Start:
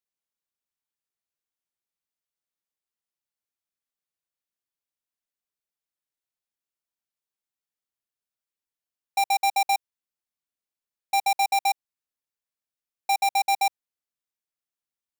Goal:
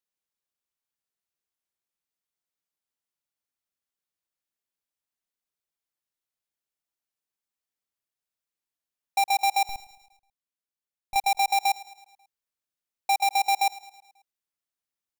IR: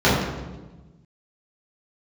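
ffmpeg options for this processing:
-filter_complex "[0:a]asettb=1/sr,asplit=3[a][b][c];[a]atrim=end=9.654[d];[b]atrim=start=9.65:end=11.16,asetpts=PTS-STARTPTS,afade=t=in:d=0.004:c=qsin,afade=t=out:st=1.506:d=0.004:c=qsin,aeval=exprs='(tanh(44.7*val(0)+0.8)-tanh(0.8))/44.7':c=same[e];[c]atrim=start=11.156[f];[d][e]acrossfade=d=0.004:c1=hsin:c2=qsin[g];[g][f]acrossfade=d=0.004:c1=qsin:c2=hsin,aecho=1:1:108|216|324|432|540:0.119|0.0642|0.0347|0.0187|0.0101"

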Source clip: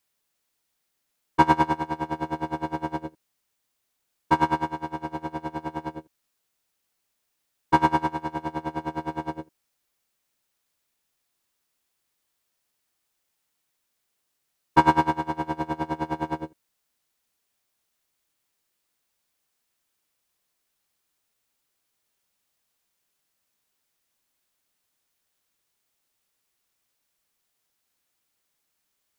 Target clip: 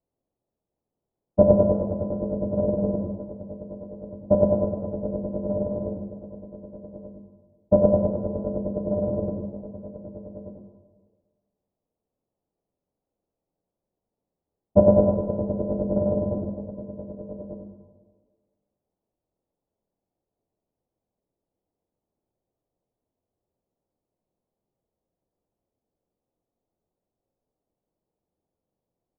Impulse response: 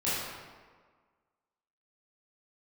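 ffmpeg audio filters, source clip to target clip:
-filter_complex "[0:a]lowpass=f=1.1k:w=0.5412,lowpass=f=1.1k:w=1.3066,aecho=1:1:1187:0.266,asetrate=27781,aresample=44100,atempo=1.5874,asplit=2[a][b];[1:a]atrim=start_sample=2205[c];[b][c]afir=irnorm=-1:irlink=0,volume=-12.5dB[d];[a][d]amix=inputs=2:normalize=0,volume=1.5dB"

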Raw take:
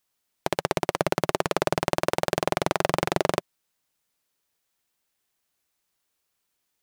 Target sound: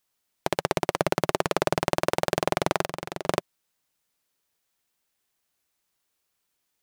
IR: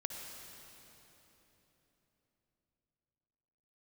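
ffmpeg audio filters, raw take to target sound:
-filter_complex "[0:a]asettb=1/sr,asplit=3[a][b][c];[a]atrim=end=2.814[d];[b]atrim=start=2.81:end=3.26,asetpts=PTS-STARTPTS,afade=t=in:d=0.004:c=qsin,afade=t=out:st=0.446:d=0.004:c=qsin,acompressor=threshold=-29dB:ratio=6[e];[c]atrim=start=3.256[f];[d][e]acrossfade=d=0.004:c1=hsin:c2=qsin[g];[g][f]acrossfade=d=0.004:c1=qsin:c2=hsin"

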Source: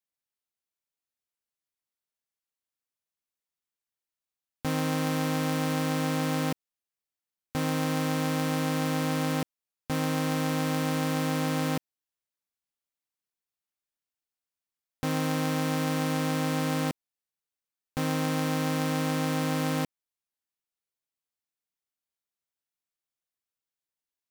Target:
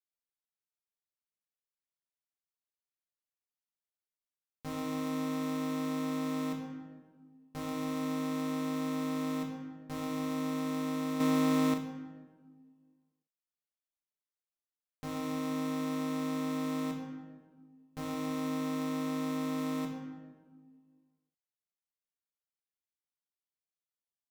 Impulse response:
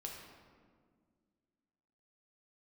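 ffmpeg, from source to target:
-filter_complex "[1:a]atrim=start_sample=2205,asetrate=57330,aresample=44100[a];[0:a][a]afir=irnorm=-1:irlink=0,asettb=1/sr,asplit=3[b][c][d];[b]atrim=end=11.204[e];[c]atrim=start=11.2:end=11.74,asetpts=PTS-STARTPTS,afade=t=in:d=0.004:c=qsin,afade=t=out:st=0.536:d=0.004:c=qsin,acontrast=71[f];[d]atrim=start=11.736[g];[e][f]acrossfade=d=0.004:c1=hsin:c2=qsin[h];[h][g]acrossfade=d=0.004:c1=qsin:c2=hsin,volume=-5.5dB"

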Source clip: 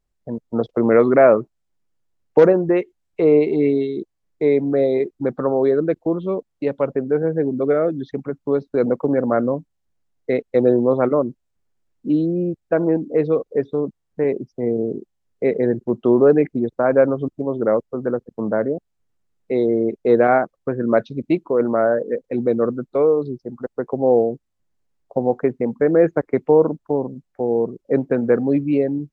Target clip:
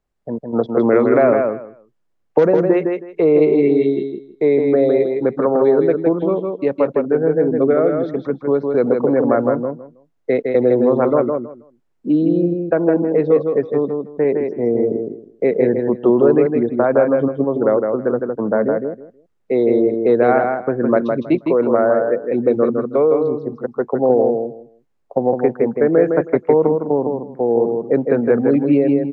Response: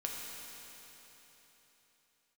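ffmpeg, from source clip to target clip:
-filter_complex "[0:a]lowshelf=f=220:g=-9,acrossover=split=220|3000[a][b][c];[b]acompressor=threshold=-19dB:ratio=3[d];[a][d][c]amix=inputs=3:normalize=0,highshelf=f=2.9k:g=-11,aecho=1:1:160|320|480:0.596|0.113|0.0215,volume=6.5dB"

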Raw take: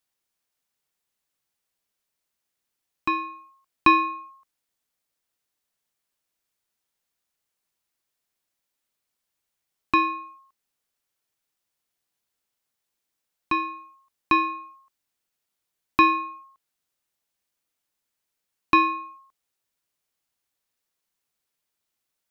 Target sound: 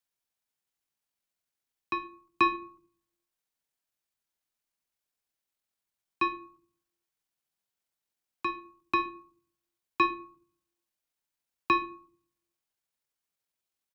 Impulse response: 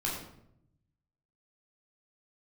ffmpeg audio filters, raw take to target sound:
-filter_complex "[0:a]asplit=2[a][b];[1:a]atrim=start_sample=2205[c];[b][c]afir=irnorm=-1:irlink=0,volume=-15dB[d];[a][d]amix=inputs=2:normalize=0,atempo=1.6,bandreject=f=60:t=h:w=6,bandreject=f=120:t=h:w=6,afreqshift=20,volume=-7dB"

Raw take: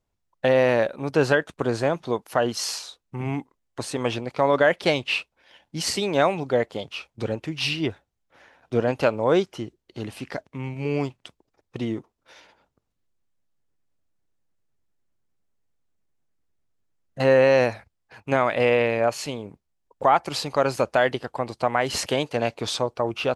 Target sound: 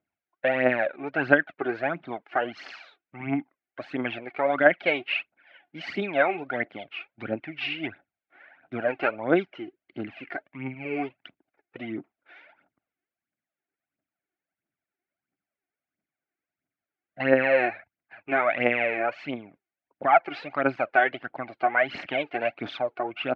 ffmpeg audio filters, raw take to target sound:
-af "aphaser=in_gain=1:out_gain=1:delay=2.9:decay=0.64:speed=1.5:type=triangular,highpass=230,equalizer=f=290:t=q:w=4:g=5,equalizer=f=470:t=q:w=4:g=-9,equalizer=f=690:t=q:w=4:g=6,equalizer=f=1k:t=q:w=4:g=-8,equalizer=f=1.5k:t=q:w=4:g=7,equalizer=f=2.2k:t=q:w=4:g=7,lowpass=f=2.8k:w=0.5412,lowpass=f=2.8k:w=1.3066,volume=-5dB"

